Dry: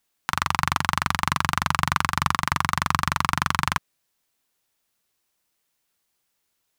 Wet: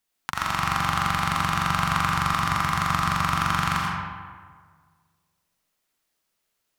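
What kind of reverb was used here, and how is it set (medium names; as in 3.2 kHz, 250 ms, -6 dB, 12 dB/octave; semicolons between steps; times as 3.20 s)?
algorithmic reverb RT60 1.7 s, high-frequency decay 0.55×, pre-delay 45 ms, DRR -4 dB; trim -5.5 dB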